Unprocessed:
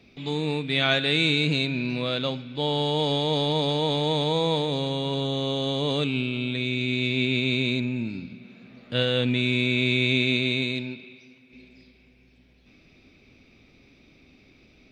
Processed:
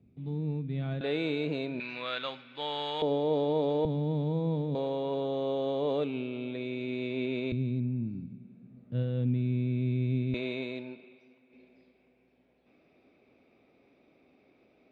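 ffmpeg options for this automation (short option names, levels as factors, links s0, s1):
-af "asetnsamples=n=441:p=0,asendcmd='1.01 bandpass f 550;1.8 bandpass f 1500;3.02 bandpass f 430;3.85 bandpass f 180;4.75 bandpass f 550;7.52 bandpass f 130;10.34 bandpass f 640',bandpass=f=120:t=q:w=1.2:csg=0"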